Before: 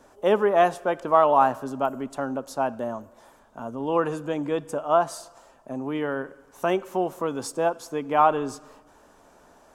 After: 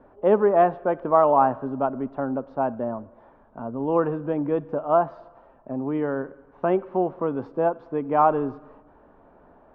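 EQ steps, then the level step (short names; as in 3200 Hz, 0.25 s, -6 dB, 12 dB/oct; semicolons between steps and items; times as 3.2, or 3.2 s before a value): air absorption 330 m; tape spacing loss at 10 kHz 30 dB; high shelf 3600 Hz -8.5 dB; +4.5 dB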